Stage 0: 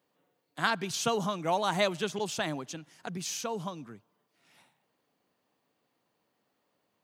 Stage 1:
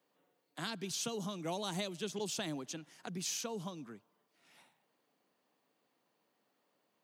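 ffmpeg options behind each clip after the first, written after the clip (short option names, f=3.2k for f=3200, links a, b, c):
-filter_complex "[0:a]acrossover=split=420|3000[a][b][c];[b]acompressor=threshold=-47dB:ratio=2.5[d];[a][d][c]amix=inputs=3:normalize=0,highpass=170,alimiter=level_in=1.5dB:limit=-24dB:level=0:latency=1:release=444,volume=-1.5dB,volume=-1.5dB"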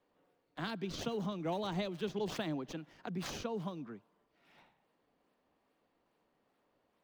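-filter_complex "[0:a]equalizer=f=5.3k:w=0.32:g=-5.5,acrossover=split=210|1100|5200[a][b][c][d];[d]acrusher=samples=30:mix=1:aa=0.000001:lfo=1:lforange=48:lforate=2.4[e];[a][b][c][e]amix=inputs=4:normalize=0,volume=3dB"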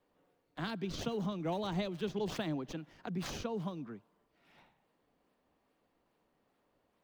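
-af "lowshelf=f=130:g=6"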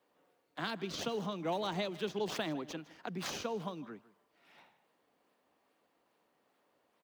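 -af "highpass=f=420:p=1,aecho=1:1:157:0.112,volume=3.5dB"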